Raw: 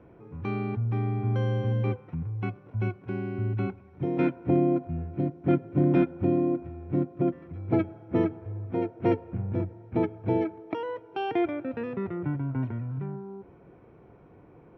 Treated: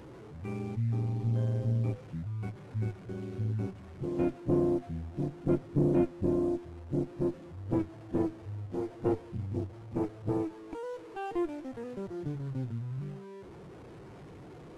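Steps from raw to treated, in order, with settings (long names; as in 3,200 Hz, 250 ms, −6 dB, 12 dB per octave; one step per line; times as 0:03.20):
linear delta modulator 64 kbit/s, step −33.5 dBFS
asymmetric clip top −36 dBFS
every bin expanded away from the loudest bin 1.5 to 1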